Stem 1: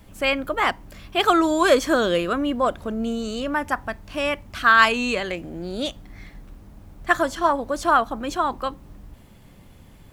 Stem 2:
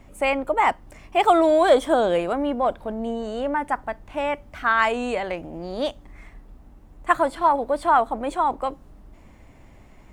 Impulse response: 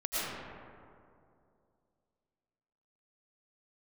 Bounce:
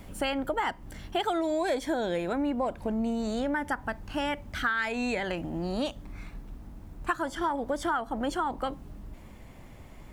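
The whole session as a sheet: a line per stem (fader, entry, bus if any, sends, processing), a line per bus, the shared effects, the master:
+1.5 dB, 0.00 s, no send, auto duck -7 dB, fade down 0.30 s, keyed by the second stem
-0.5 dB, 0.00 s, no send, none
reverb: none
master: compression 6:1, threshold -26 dBFS, peak gain reduction 13 dB

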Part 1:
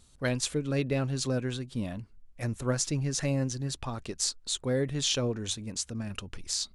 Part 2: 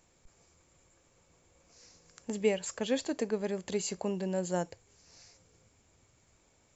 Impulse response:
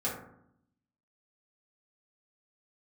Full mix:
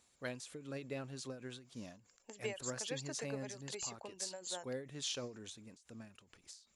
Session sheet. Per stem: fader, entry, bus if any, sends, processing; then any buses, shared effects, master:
-11.0 dB, 0.00 s, no send, none
-4.0 dB, 0.00 s, no send, reverb removal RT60 0.7 s; high-pass 900 Hz 6 dB/octave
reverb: none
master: high-pass 270 Hz 6 dB/octave; endings held to a fixed fall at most 130 dB/s

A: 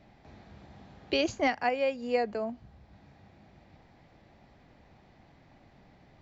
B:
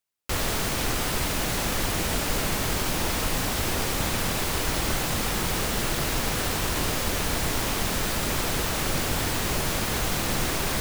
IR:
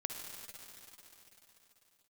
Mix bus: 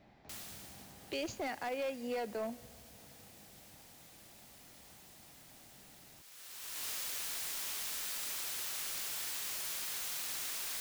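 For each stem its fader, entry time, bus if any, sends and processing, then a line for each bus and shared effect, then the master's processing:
-4.5 dB, 0.00 s, send -15.5 dB, peak limiter -25.5 dBFS, peak gain reduction 8.5 dB
-3.5 dB, 0.00 s, no send, pre-emphasis filter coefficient 0.97; treble shelf 6 kHz -8.5 dB; auto duck -19 dB, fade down 0.95 s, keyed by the first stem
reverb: on, RT60 3.9 s, pre-delay 49 ms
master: bass shelf 120 Hz -5.5 dB; wavefolder -31.5 dBFS

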